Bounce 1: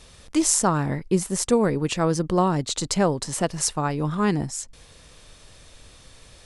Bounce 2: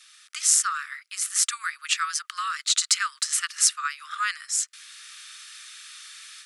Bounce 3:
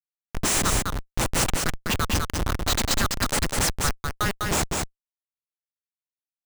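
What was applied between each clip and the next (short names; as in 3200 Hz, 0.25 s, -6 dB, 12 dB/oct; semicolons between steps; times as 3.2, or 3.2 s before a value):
AGC gain up to 9 dB; steep high-pass 1200 Hz 96 dB/oct
Schmitt trigger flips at -22.5 dBFS; echo 0.201 s -3.5 dB; gain +6 dB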